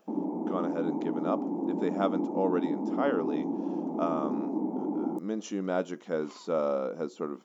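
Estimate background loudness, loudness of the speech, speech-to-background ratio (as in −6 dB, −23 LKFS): −32.5 LKFS, −33.0 LKFS, −0.5 dB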